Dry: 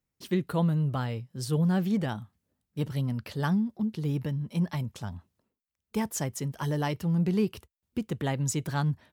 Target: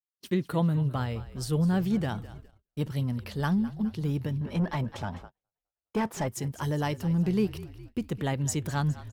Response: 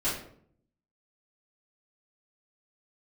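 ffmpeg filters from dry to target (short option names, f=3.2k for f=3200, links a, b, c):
-filter_complex "[0:a]asplit=6[a][b][c][d][e][f];[b]adelay=206,afreqshift=-42,volume=-16.5dB[g];[c]adelay=412,afreqshift=-84,volume=-21.2dB[h];[d]adelay=618,afreqshift=-126,volume=-26dB[i];[e]adelay=824,afreqshift=-168,volume=-30.7dB[j];[f]adelay=1030,afreqshift=-210,volume=-35.4dB[k];[a][g][h][i][j][k]amix=inputs=6:normalize=0,agate=range=-39dB:threshold=-45dB:ratio=16:detection=peak,asettb=1/sr,asplit=3[l][m][n];[l]atrim=end=4.414[o];[m]atrim=start=4.41:end=6.28,asetpts=PTS-STARTPTS,afade=t=in:d=0.004:c=qsin,afade=t=out:st=1.866:d=0.004:c=qsin,asplit=2[p][q];[q]highpass=f=720:p=1,volume=21dB,asoftclip=type=tanh:threshold=-18dB[r];[p][r]amix=inputs=2:normalize=0,lowpass=f=1k:p=1,volume=-6dB[s];[n]atrim=start=6.276[t];[o][s]acrossfade=d=0.004:c1=hsin:c2=qsin[u];[u][t]acrossfade=d=0.004:c1=qsin:c2=hsin"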